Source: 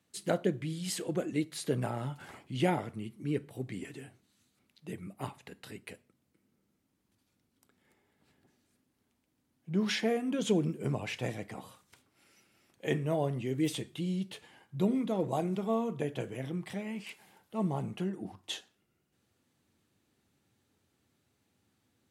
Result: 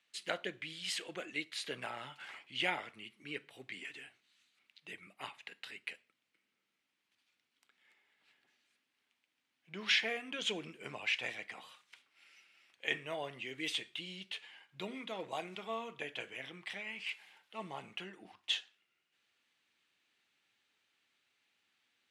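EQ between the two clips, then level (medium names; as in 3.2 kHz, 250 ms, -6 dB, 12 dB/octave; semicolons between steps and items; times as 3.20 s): band-pass filter 2.6 kHz, Q 1.5; +7.0 dB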